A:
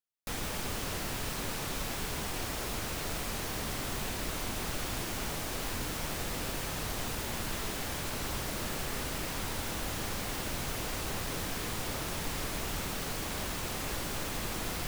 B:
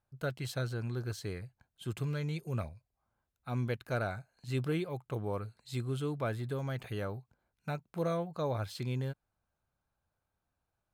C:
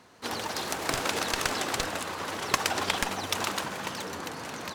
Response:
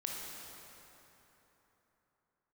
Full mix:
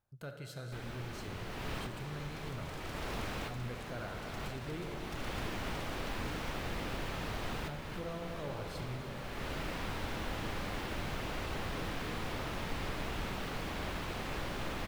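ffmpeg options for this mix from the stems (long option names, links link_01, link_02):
-filter_complex "[0:a]acrossover=split=4000[link_01][link_02];[link_02]acompressor=threshold=-56dB:ratio=4:attack=1:release=60[link_03];[link_01][link_03]amix=inputs=2:normalize=0,adelay=450,volume=-4dB,asplit=2[link_04][link_05];[link_05]volume=-7.5dB[link_06];[1:a]volume=-3dB,asplit=3[link_07][link_08][link_09];[link_07]atrim=end=4.95,asetpts=PTS-STARTPTS,afade=type=out:start_time=4.946:duration=0.004:curve=hsin[link_10];[link_08]atrim=start=4.95:end=7.41,asetpts=PTS-STARTPTS,volume=0[link_11];[link_09]atrim=start=7.41,asetpts=PTS-STARTPTS,afade=type=in:duration=0.004:curve=hsin[link_12];[link_10][link_11][link_12]concat=n=3:v=0:a=1,asplit=3[link_13][link_14][link_15];[link_14]volume=-9dB[link_16];[2:a]adelay=1800,volume=-12.5dB[link_17];[link_15]apad=whole_len=675855[link_18];[link_04][link_18]sidechaincompress=threshold=-50dB:ratio=8:attack=16:release=390[link_19];[link_13][link_17]amix=inputs=2:normalize=0,asoftclip=type=hard:threshold=-35dB,acompressor=threshold=-51dB:ratio=6,volume=0dB[link_20];[3:a]atrim=start_sample=2205[link_21];[link_06][link_16]amix=inputs=2:normalize=0[link_22];[link_22][link_21]afir=irnorm=-1:irlink=0[link_23];[link_19][link_20][link_23]amix=inputs=3:normalize=0"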